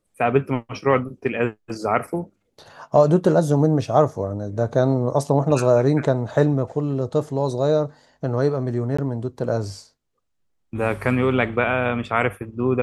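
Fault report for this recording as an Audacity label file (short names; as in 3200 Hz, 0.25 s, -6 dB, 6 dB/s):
8.970000	8.980000	gap 15 ms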